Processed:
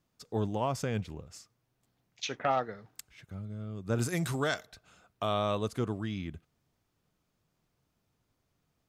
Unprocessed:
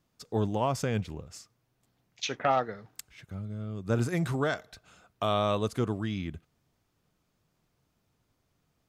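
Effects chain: 3.98–4.65 high shelf 4000 Hz -> 2400 Hz +11 dB; gain -3 dB

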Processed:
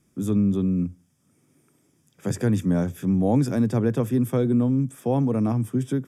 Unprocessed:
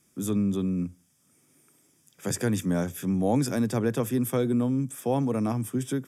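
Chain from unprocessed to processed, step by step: tilt -2 dB/oct

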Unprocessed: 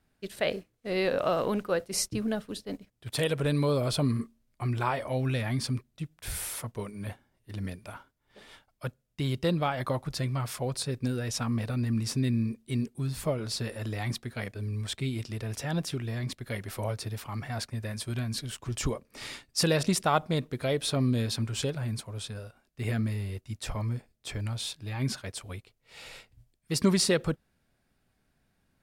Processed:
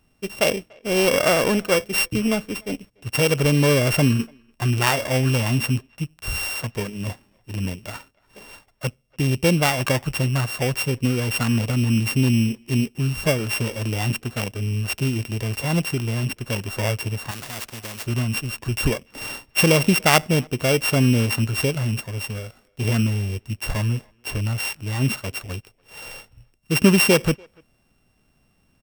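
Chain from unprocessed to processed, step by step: sample sorter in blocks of 16 samples; speakerphone echo 0.29 s, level -28 dB; 17.31–18.07 spectral compressor 2:1; gain +9 dB

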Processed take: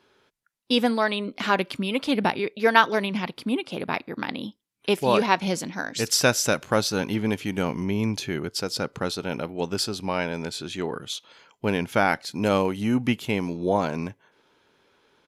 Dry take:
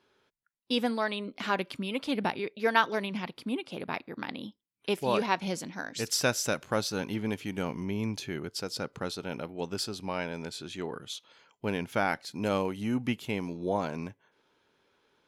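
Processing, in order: downsampling 32000 Hz; gain +7 dB

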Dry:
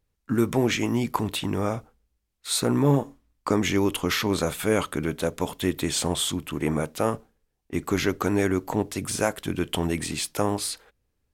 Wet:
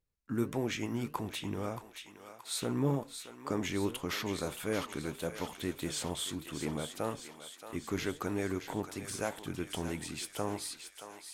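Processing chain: flange 1.7 Hz, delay 5.5 ms, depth 4.8 ms, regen +88%; on a send: thinning echo 0.625 s, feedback 66%, high-pass 870 Hz, level -8 dB; on the sum: gain -6.5 dB

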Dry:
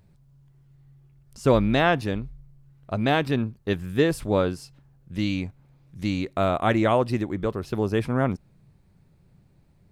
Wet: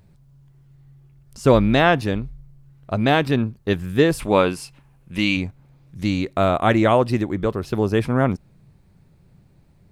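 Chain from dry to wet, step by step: 4.19–5.37 fifteen-band EQ 100 Hz -7 dB, 1000 Hz +6 dB, 2500 Hz +10 dB, 10000 Hz +7 dB; gain +4.5 dB

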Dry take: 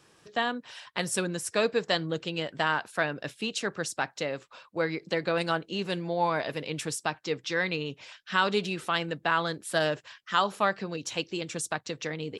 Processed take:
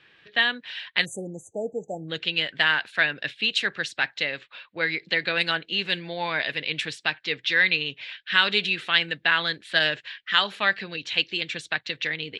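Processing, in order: band shelf 2600 Hz +15 dB; low-pass opened by the level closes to 3000 Hz, open at -15.5 dBFS; spectral delete 1.05–2.08, 880–6000 Hz; gain -3.5 dB

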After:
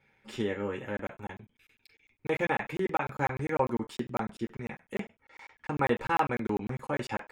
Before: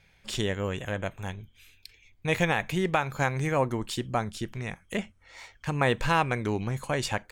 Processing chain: reverb RT60 0.25 s, pre-delay 3 ms, DRR 1 dB; crackling interface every 0.10 s, samples 1024, zero, from 0.97; gain -8 dB

